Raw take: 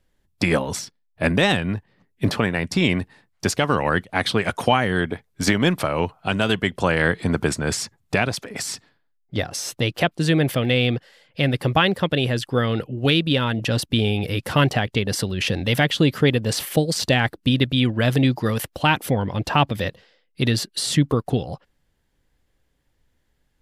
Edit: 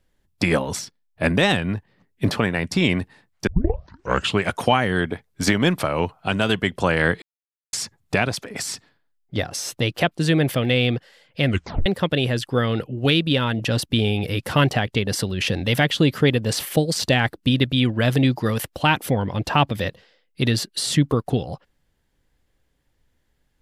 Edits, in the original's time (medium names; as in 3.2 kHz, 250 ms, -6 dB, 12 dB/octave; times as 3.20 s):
3.47 s: tape start 0.96 s
7.22–7.73 s: mute
11.46 s: tape stop 0.40 s